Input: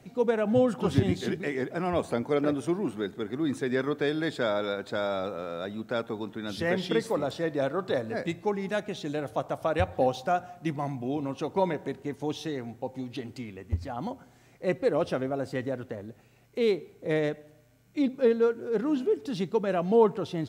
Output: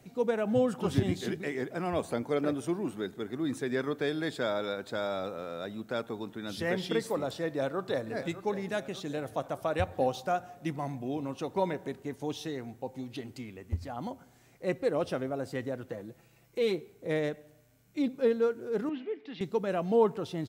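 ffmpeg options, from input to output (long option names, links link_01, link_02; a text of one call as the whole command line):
ffmpeg -i in.wav -filter_complex "[0:a]asplit=2[link_01][link_02];[link_02]afade=type=in:start_time=7.46:duration=0.01,afade=type=out:start_time=8.14:duration=0.01,aecho=0:1:600|1200|1800|2400|3000|3600|4200:0.223872|0.134323|0.080594|0.0483564|0.0290138|0.0174083|0.010445[link_03];[link_01][link_03]amix=inputs=2:normalize=0,asettb=1/sr,asplit=3[link_04][link_05][link_06];[link_04]atrim=end=15.874[link_07];[link_05]atrim=start=15.87:end=16.81,asetpts=PTS-STARTPTS,afade=type=in:duration=0.004:curve=qsin,afade=type=out:start_time=0.936:duration=0.004:curve=qsin,aecho=1:1:6:0.61,atrim=end_sample=41454[link_08];[link_06]atrim=start=16.806[link_09];[link_07][link_08]acrossfade=duration=0.004:curve1=hsin:curve2=qsin[link_10];[link_10][link_09]acrossfade=duration=0.004:curve1=qsin:curve2=hsin,asettb=1/sr,asplit=3[link_11][link_12][link_13];[link_11]atrim=end=18.894[link_14];[link_12]atrim=start=18.89:end=19.41,asetpts=PTS-STARTPTS,afade=type=in:duration=0.004:curve=qsin,afade=type=out:start_time=0.516:duration=0.004:curve=qsin,highpass=340,equalizer=frequency=390:width_type=q:width=4:gain=-6,equalizer=frequency=580:width_type=q:width=4:gain=-9,equalizer=frequency=950:width_type=q:width=4:gain=-5,equalizer=frequency=1400:width_type=q:width=4:gain=-6,equalizer=frequency=2100:width_type=q:width=4:gain=9,lowpass=frequency=3400:width=0.5412,lowpass=frequency=3400:width=1.3066[link_15];[link_13]atrim=start=19.406[link_16];[link_14][link_15]acrossfade=duration=0.004:curve1=hsin:curve2=qsin[link_17];[link_17][link_16]acrossfade=duration=0.004:curve1=qsin:curve2=hsin,highshelf=frequency=8000:gain=7.5,volume=-3.5dB" out.wav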